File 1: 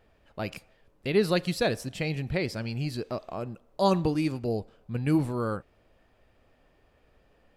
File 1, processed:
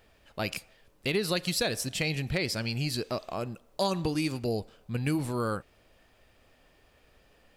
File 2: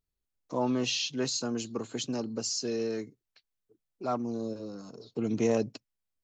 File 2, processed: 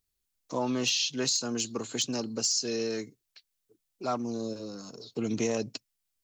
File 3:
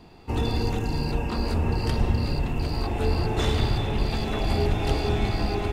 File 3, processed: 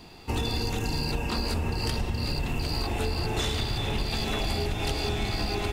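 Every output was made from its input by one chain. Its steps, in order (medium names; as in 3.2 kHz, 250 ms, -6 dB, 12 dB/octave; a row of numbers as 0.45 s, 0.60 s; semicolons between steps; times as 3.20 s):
treble shelf 2.3 kHz +11 dB; compression 10:1, threshold -24 dBFS; overload inside the chain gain 18.5 dB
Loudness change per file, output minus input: -1.5 LU, +1.5 LU, -3.0 LU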